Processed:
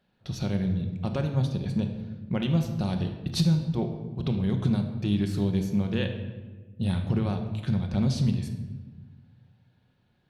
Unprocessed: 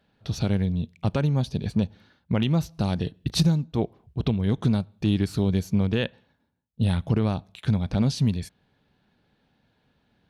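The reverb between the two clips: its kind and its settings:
rectangular room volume 1,000 cubic metres, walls mixed, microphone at 0.97 metres
level −5 dB

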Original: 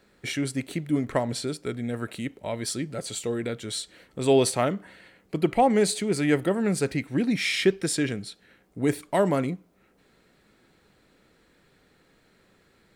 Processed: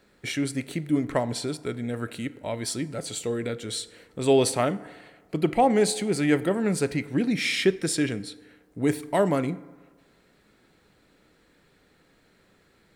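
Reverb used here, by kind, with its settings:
feedback delay network reverb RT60 1.5 s, low-frequency decay 0.75×, high-frequency decay 0.45×, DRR 15.5 dB

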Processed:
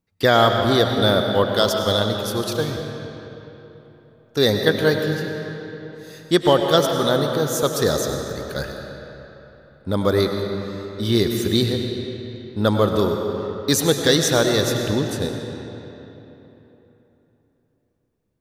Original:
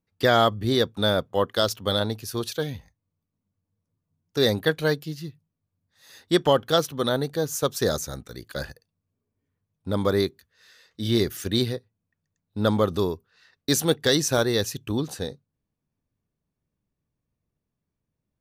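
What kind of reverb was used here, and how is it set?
comb and all-pass reverb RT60 3.5 s, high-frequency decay 0.7×, pre-delay 60 ms, DRR 3.5 dB
level +3.5 dB

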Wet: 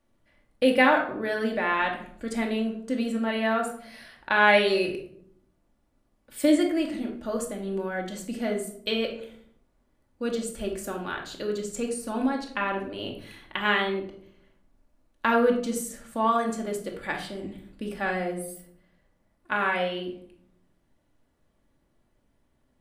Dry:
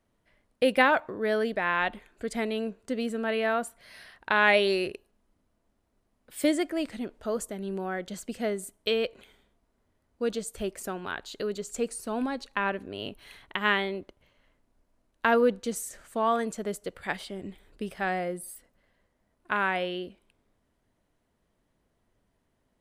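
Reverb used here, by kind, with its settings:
rectangular room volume 960 cubic metres, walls furnished, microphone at 2.4 metres
level −1 dB

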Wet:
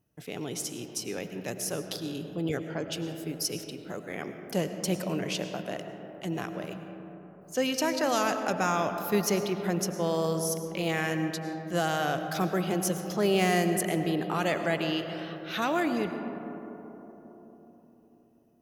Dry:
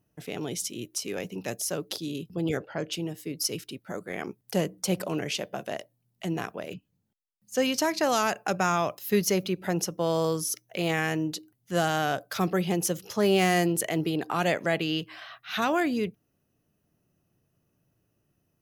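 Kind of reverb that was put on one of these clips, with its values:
comb and all-pass reverb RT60 4.2 s, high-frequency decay 0.25×, pre-delay 65 ms, DRR 7 dB
level −2.5 dB

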